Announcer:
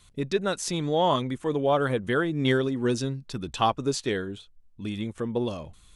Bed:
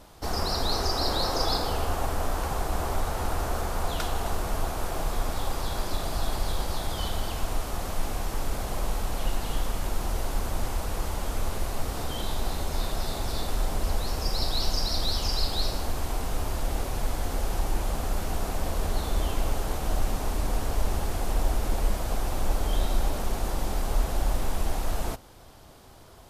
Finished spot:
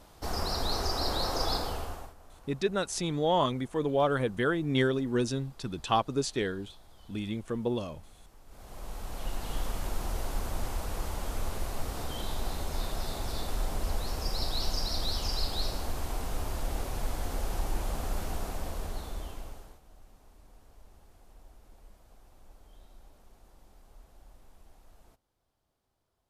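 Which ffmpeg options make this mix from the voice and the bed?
-filter_complex "[0:a]adelay=2300,volume=0.708[s0];[1:a]volume=7.94,afade=t=out:st=1.56:d=0.58:silence=0.0749894,afade=t=in:st=8.46:d=1.19:silence=0.0794328,afade=t=out:st=18.21:d=1.6:silence=0.0562341[s1];[s0][s1]amix=inputs=2:normalize=0"

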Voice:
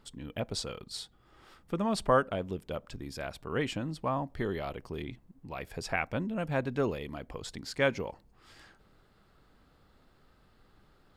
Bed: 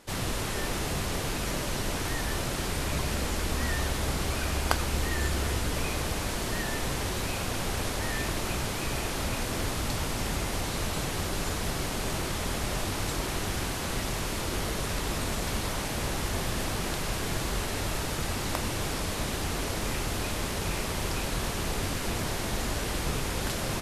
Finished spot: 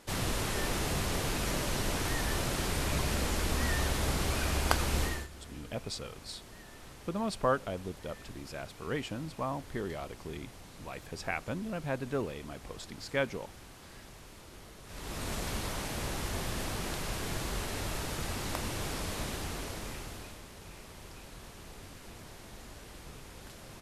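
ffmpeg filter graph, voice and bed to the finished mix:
-filter_complex "[0:a]adelay=5350,volume=0.668[s0];[1:a]volume=4.73,afade=t=out:st=5.02:d=0.25:silence=0.11885,afade=t=in:st=14.85:d=0.48:silence=0.177828,afade=t=out:st=19.18:d=1.25:silence=0.223872[s1];[s0][s1]amix=inputs=2:normalize=0"

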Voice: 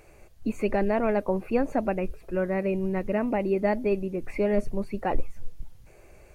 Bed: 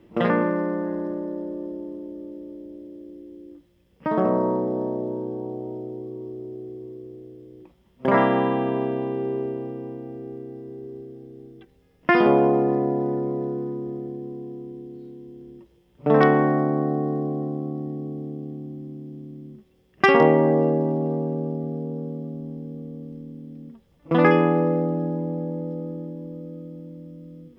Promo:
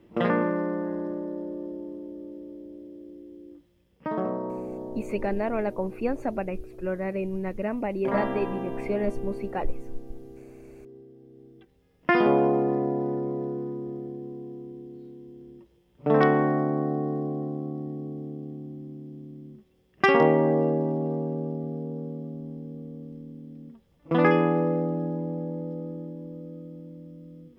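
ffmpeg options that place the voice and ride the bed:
-filter_complex "[0:a]adelay=4500,volume=0.708[s0];[1:a]volume=1.5,afade=t=out:st=3.76:d=0.63:silence=0.446684,afade=t=in:st=11.15:d=0.86:silence=0.473151[s1];[s0][s1]amix=inputs=2:normalize=0"

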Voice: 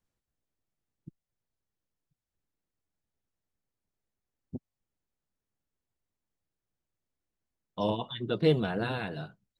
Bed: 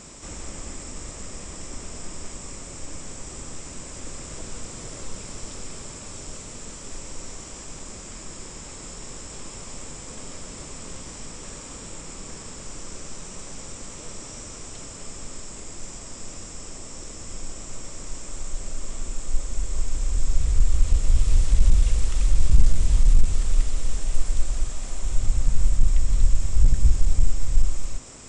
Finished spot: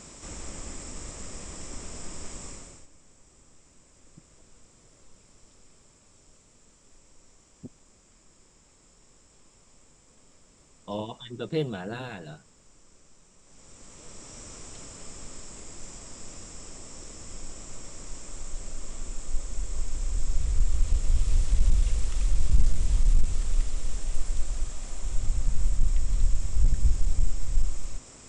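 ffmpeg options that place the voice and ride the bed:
-filter_complex "[0:a]adelay=3100,volume=0.631[s0];[1:a]volume=4.22,afade=t=out:st=2.45:d=0.43:silence=0.133352,afade=t=in:st=13.42:d=1.1:silence=0.16788[s1];[s0][s1]amix=inputs=2:normalize=0"

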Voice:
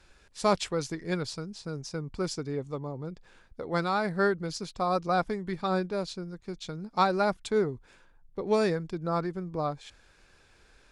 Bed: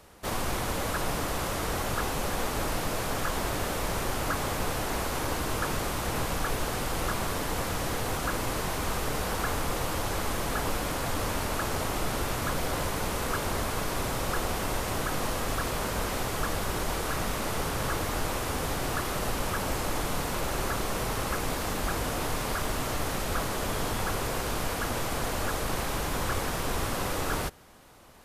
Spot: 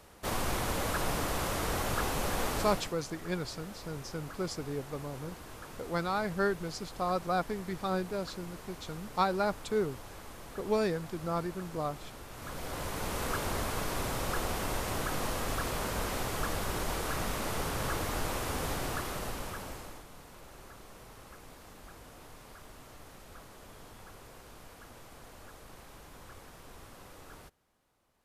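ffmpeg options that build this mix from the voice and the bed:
-filter_complex "[0:a]adelay=2200,volume=0.631[s0];[1:a]volume=3.76,afade=t=out:st=2.52:d=0.42:silence=0.177828,afade=t=in:st=12.3:d=0.94:silence=0.211349,afade=t=out:st=18.71:d=1.34:silence=0.133352[s1];[s0][s1]amix=inputs=2:normalize=0"

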